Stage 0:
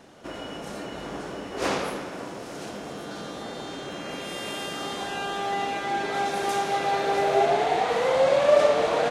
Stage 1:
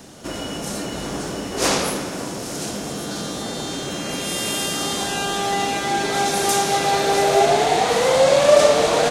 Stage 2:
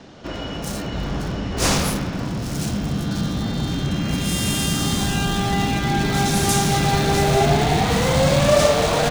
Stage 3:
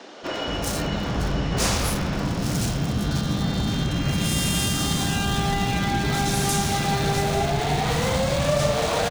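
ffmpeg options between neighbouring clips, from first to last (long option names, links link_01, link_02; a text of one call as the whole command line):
ffmpeg -i in.wav -filter_complex "[0:a]bass=frequency=250:gain=-5,treble=frequency=4000:gain=13,acrossover=split=240|2000[link_01][link_02][link_03];[link_01]aeval=exprs='0.0266*sin(PI/2*2.51*val(0)/0.0266)':channel_layout=same[link_04];[link_04][link_02][link_03]amix=inputs=3:normalize=0,volume=5dB" out.wav
ffmpeg -i in.wav -filter_complex "[0:a]asubboost=boost=11:cutoff=150,acrossover=split=5100[link_01][link_02];[link_02]acrusher=bits=4:mix=0:aa=0.5[link_03];[link_01][link_03]amix=inputs=2:normalize=0" out.wav
ffmpeg -i in.wav -filter_complex "[0:a]acompressor=threshold=-23dB:ratio=6,acrossover=split=280[link_01][link_02];[link_01]adelay=230[link_03];[link_03][link_02]amix=inputs=2:normalize=0,volume=4dB" out.wav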